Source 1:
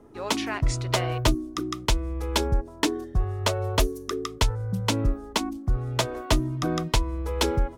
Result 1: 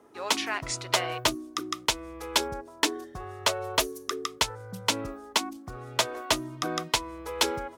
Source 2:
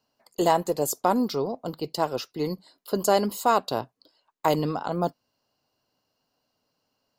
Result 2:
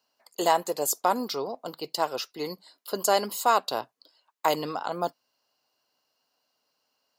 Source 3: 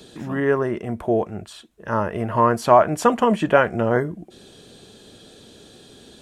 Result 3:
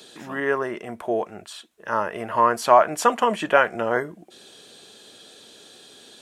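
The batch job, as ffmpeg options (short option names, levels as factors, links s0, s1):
-af "highpass=f=840:p=1,volume=1.33"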